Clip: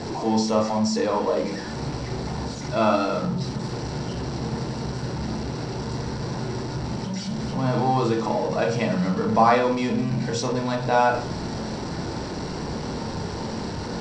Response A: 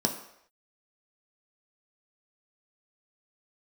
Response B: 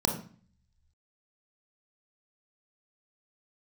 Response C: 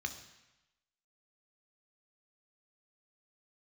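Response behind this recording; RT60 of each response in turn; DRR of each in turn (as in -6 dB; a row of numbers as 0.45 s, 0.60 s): B; no single decay rate, 0.45 s, 1.0 s; 2.0 dB, 2.0 dB, 5.5 dB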